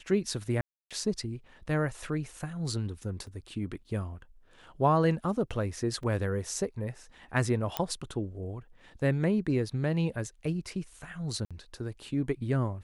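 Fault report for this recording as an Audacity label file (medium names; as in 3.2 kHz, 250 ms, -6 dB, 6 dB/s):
0.610000	0.910000	dropout 296 ms
3.270000	3.270000	dropout 3 ms
6.030000	6.030000	dropout 3.2 ms
7.770000	7.770000	pop -12 dBFS
11.450000	11.510000	dropout 56 ms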